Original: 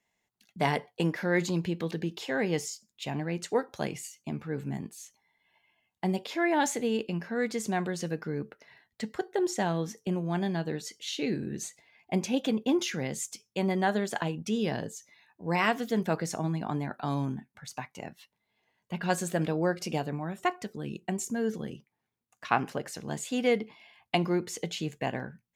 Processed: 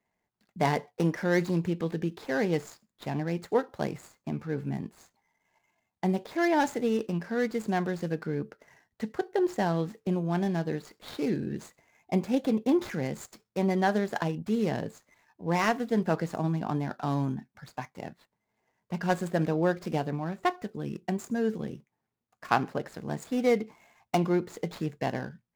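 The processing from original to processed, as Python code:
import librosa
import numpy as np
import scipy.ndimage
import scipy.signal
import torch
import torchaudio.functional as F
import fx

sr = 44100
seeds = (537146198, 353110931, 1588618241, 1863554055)

y = scipy.signal.medfilt(x, 15)
y = y * 10.0 ** (2.0 / 20.0)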